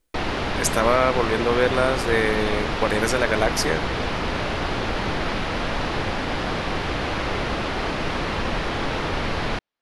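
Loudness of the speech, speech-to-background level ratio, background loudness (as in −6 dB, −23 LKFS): −22.5 LKFS, 3.0 dB, −25.5 LKFS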